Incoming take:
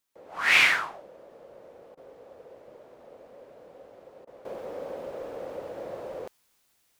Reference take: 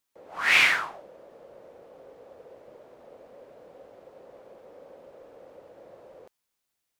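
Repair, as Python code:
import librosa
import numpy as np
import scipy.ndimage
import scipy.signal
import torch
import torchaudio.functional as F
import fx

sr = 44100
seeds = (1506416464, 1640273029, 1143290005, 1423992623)

y = fx.fix_interpolate(x, sr, at_s=(1.95, 4.25), length_ms=21.0)
y = fx.fix_level(y, sr, at_s=4.45, step_db=-12.0)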